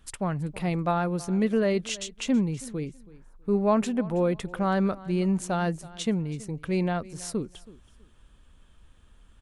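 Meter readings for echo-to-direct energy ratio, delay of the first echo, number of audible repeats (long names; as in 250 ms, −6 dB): −20.0 dB, 325 ms, 2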